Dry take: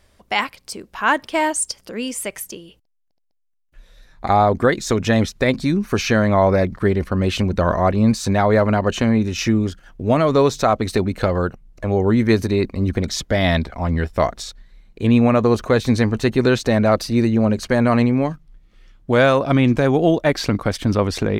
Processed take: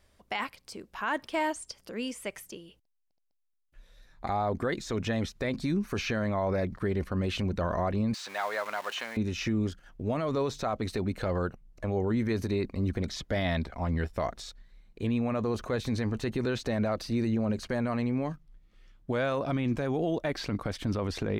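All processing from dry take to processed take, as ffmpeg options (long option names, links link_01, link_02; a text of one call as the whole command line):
ffmpeg -i in.wav -filter_complex "[0:a]asettb=1/sr,asplit=3[link_01][link_02][link_03];[link_01]atrim=end=8.144[link_04];[link_02]atrim=start=8.14:end=9.17,asetpts=PTS-STARTPTS,afade=type=in:duration=0.004:curve=qsin,afade=type=out:start_time=1.026:duration=0.004:curve=qsin,aeval=exprs='val(0)+0.5*0.0473*sgn(val(0))':channel_layout=same,highpass=990,acrossover=split=5200[link_05][link_06];[link_06]acompressor=threshold=-37dB:ratio=4:attack=1:release=60[link_07];[link_05][link_07]amix=inputs=2:normalize=0[link_08];[link_03]atrim=start=9.166[link_09];[link_04][link_08]acrossfade=duration=0.004:curve1=hsin:curve2=qsin[link_10];[link_10][link_09]acrossfade=duration=0.004:curve1=qsin:curve2=hsin,acrossover=split=4400[link_11][link_12];[link_12]acompressor=threshold=-36dB:ratio=4:attack=1:release=60[link_13];[link_11][link_13]amix=inputs=2:normalize=0,alimiter=limit=-12dB:level=0:latency=1:release=32,volume=-8.5dB" out.wav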